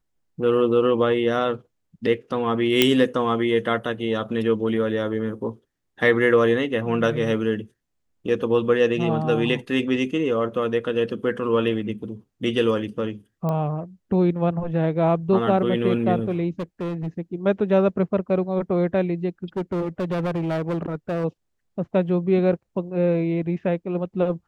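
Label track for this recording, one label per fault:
2.820000	2.820000	pop -1 dBFS
13.490000	13.490000	pop -16 dBFS
16.590000	17.080000	clipped -24.5 dBFS
19.440000	21.250000	clipped -21.5 dBFS

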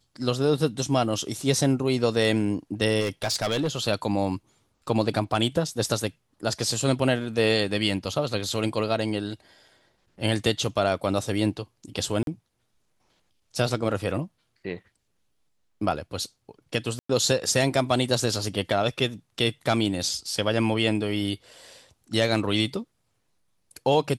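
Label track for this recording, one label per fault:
3.000000	3.680000	clipped -20.5 dBFS
12.230000	12.270000	dropout 42 ms
16.990000	17.090000	dropout 104 ms

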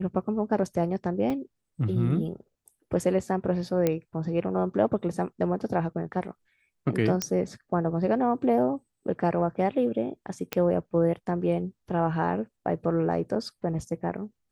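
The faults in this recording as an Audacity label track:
1.300000	1.300000	dropout 2.4 ms
3.870000	3.870000	pop -11 dBFS
7.220000	7.220000	pop -11 dBFS
10.530000	10.530000	pop -12 dBFS

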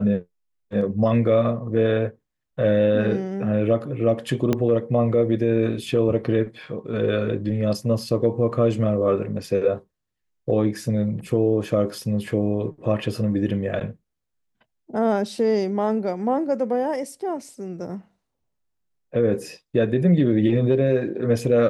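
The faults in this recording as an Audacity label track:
4.530000	4.530000	pop -9 dBFS

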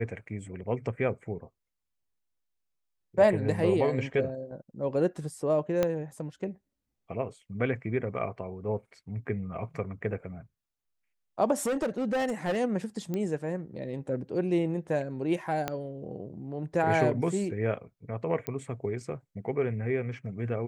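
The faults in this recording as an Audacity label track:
5.830000	5.830000	pop -13 dBFS
11.600000	12.580000	clipped -25 dBFS
13.140000	13.140000	pop -20 dBFS
15.680000	15.680000	pop -15 dBFS
18.470000	18.470000	pop -16 dBFS

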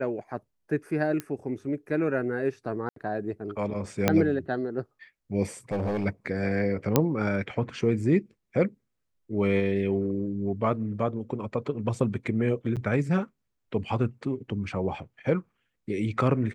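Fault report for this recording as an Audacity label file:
1.200000	1.200000	pop -17 dBFS
2.890000	2.960000	dropout 73 ms
4.080000	4.080000	pop -6 dBFS
5.720000	6.060000	clipped -24.5 dBFS
6.960000	6.960000	pop -5 dBFS
12.760000	12.770000	dropout 7.5 ms

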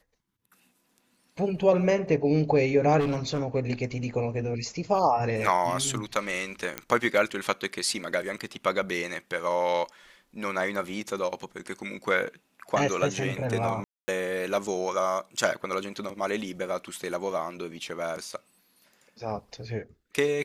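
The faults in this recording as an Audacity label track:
2.990000	3.400000	clipped -23.5 dBFS
6.780000	6.780000	pop -13 dBFS
13.840000	14.080000	dropout 240 ms

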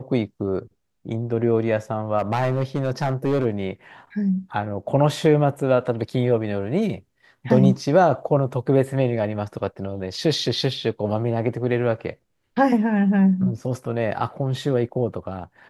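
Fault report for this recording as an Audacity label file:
2.180000	3.460000	clipped -16 dBFS

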